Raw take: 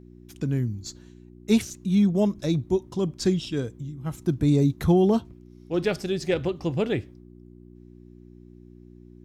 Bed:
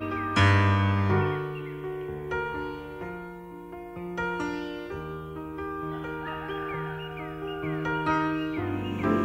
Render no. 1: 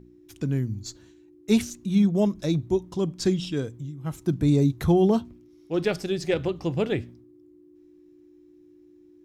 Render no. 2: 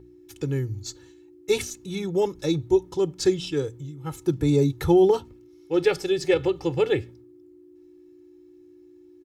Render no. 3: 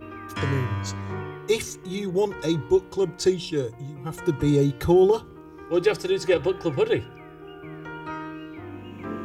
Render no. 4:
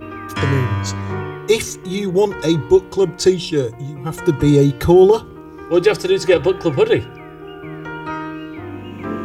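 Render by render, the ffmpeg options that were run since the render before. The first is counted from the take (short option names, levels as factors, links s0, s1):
-af "bandreject=f=60:t=h:w=4,bandreject=f=120:t=h:w=4,bandreject=f=180:t=h:w=4,bandreject=f=240:t=h:w=4"
-af "lowshelf=f=64:g=-9,aecho=1:1:2.3:0.95"
-filter_complex "[1:a]volume=0.376[s0];[0:a][s0]amix=inputs=2:normalize=0"
-af "volume=2.51,alimiter=limit=0.794:level=0:latency=1"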